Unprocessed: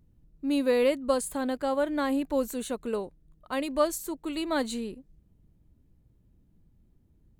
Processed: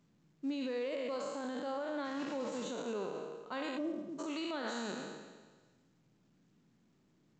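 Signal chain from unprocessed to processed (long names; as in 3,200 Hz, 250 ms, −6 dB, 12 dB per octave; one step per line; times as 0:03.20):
peak hold with a decay on every bin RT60 1.34 s
0:02.04–0:02.63: background noise pink −40 dBFS
0:03.77–0:04.18: low-pass with resonance 380 Hz → 160 Hz, resonance Q 3.6
downward compressor, threshold −26 dBFS, peak gain reduction 8 dB
spring reverb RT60 1 s, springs 47 ms, chirp 40 ms, DRR 12 dB
brickwall limiter −24.5 dBFS, peak gain reduction 7.5 dB
high-pass filter 150 Hz 24 dB per octave
level −5.5 dB
mu-law 128 kbit/s 16,000 Hz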